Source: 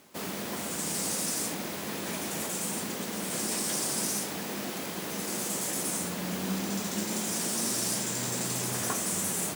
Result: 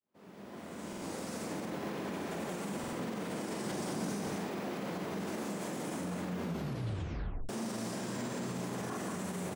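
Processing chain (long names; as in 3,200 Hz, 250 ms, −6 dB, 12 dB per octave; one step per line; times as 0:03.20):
fade in at the beginning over 1.79 s
low-pass filter 1,100 Hz 6 dB per octave
double-tracking delay 45 ms −5.5 dB
single-tap delay 182 ms −4 dB
brickwall limiter −29.5 dBFS, peak gain reduction 10 dB
0:03.64–0:04.37: low-shelf EQ 160 Hz +7.5 dB
0:06.42: tape stop 1.07 s
buffer that repeats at 0:00.88/0:02.79, samples 2,048, times 2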